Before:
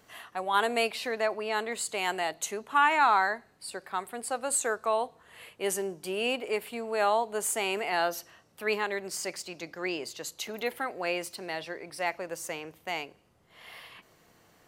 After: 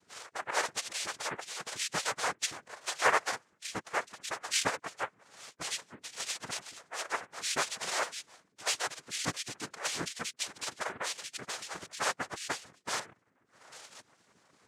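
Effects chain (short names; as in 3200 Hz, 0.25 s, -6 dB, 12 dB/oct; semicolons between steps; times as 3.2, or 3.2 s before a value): median-filter separation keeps percussive; 12.99–13.72 resonant high shelf 2000 Hz -11 dB, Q 1.5; noise vocoder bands 3; gain +1.5 dB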